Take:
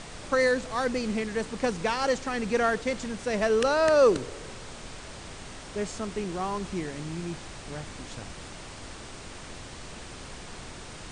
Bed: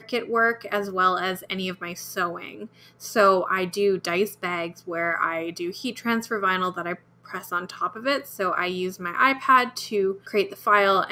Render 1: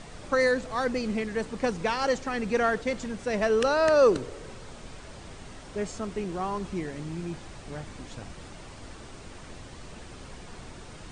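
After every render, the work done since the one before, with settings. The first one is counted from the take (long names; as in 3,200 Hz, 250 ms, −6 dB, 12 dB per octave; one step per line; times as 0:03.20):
broadband denoise 6 dB, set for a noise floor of −43 dBFS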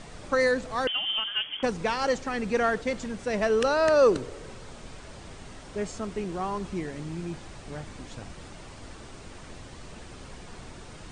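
0:00.87–0:01.63: voice inversion scrambler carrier 3,300 Hz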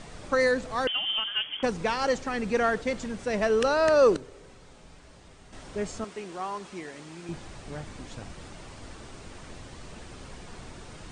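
0:04.16–0:05.53: tuned comb filter 57 Hz, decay 0.54 s, harmonics odd, mix 70%
0:06.04–0:07.29: high-pass filter 620 Hz 6 dB per octave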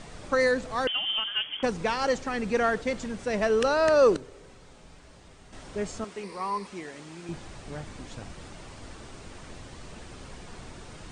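0:06.23–0:06.67: EQ curve with evenly spaced ripples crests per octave 0.9, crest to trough 13 dB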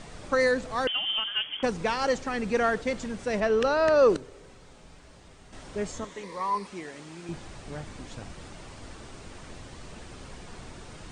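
0:03.40–0:04.10: high-frequency loss of the air 78 metres
0:05.93–0:06.55: EQ curve with evenly spaced ripples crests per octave 1.1, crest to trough 8 dB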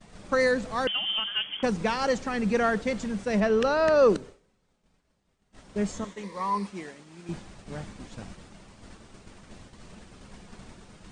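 downward expander −37 dBFS
parametric band 200 Hz +9.5 dB 0.29 octaves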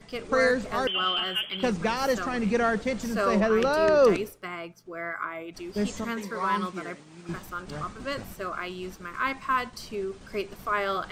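mix in bed −9 dB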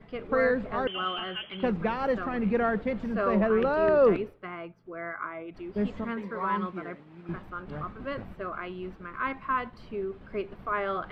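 high-frequency loss of the air 480 metres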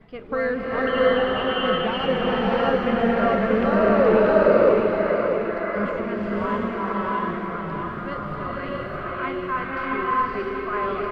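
repeating echo 638 ms, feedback 46%, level −6.5 dB
slow-attack reverb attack 650 ms, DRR −5.5 dB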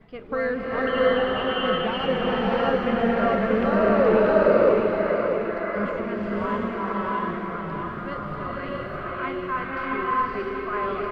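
level −1.5 dB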